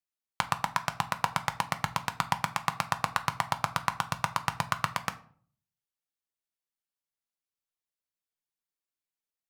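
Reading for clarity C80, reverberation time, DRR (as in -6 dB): 21.0 dB, 0.50 s, 8.5 dB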